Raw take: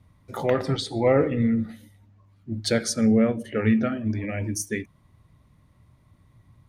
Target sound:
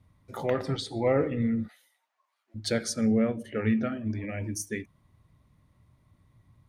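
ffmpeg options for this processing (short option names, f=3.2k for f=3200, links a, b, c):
-filter_complex "[0:a]asplit=3[a][b][c];[a]afade=t=out:st=1.67:d=0.02[d];[b]highpass=f=740:w=0.5412,highpass=f=740:w=1.3066,afade=t=in:st=1.67:d=0.02,afade=t=out:st=2.54:d=0.02[e];[c]afade=t=in:st=2.54:d=0.02[f];[d][e][f]amix=inputs=3:normalize=0,volume=-5dB"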